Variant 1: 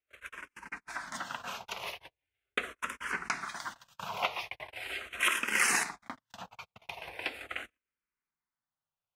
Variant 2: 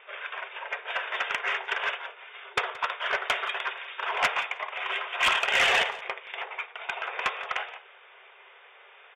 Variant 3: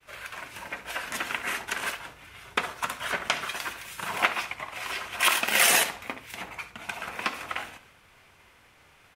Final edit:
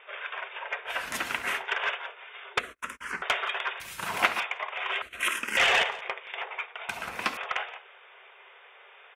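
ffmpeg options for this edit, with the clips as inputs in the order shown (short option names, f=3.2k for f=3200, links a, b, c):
-filter_complex "[2:a]asplit=3[a][b][c];[0:a]asplit=2[d][e];[1:a]asplit=6[f][g][h][i][j][k];[f]atrim=end=1.08[l];[a]atrim=start=0.84:end=1.66[m];[g]atrim=start=1.42:end=2.592[n];[d]atrim=start=2.588:end=3.222[o];[h]atrim=start=3.218:end=3.802[p];[b]atrim=start=3.798:end=4.402[q];[i]atrim=start=4.398:end=5.022[r];[e]atrim=start=5.018:end=5.572[s];[j]atrim=start=5.568:end=6.892[t];[c]atrim=start=6.888:end=7.372[u];[k]atrim=start=7.368[v];[l][m]acrossfade=d=0.24:c1=tri:c2=tri[w];[w][n]acrossfade=d=0.24:c1=tri:c2=tri[x];[x][o]acrossfade=d=0.004:c1=hsin:c2=hsin[y];[y][p]acrossfade=d=0.004:c1=hsin:c2=hsin[z];[z][q]acrossfade=d=0.004:c1=hsin:c2=hsin[aa];[aa][r]acrossfade=d=0.004:c1=hsin:c2=hsin[ab];[ab][s]acrossfade=d=0.004:c1=hsin:c2=hsin[ac];[ac][t]acrossfade=d=0.004:c1=hsin:c2=hsin[ad];[ad][u]acrossfade=d=0.004:c1=hsin:c2=hsin[ae];[ae][v]acrossfade=d=0.004:c1=hsin:c2=hsin"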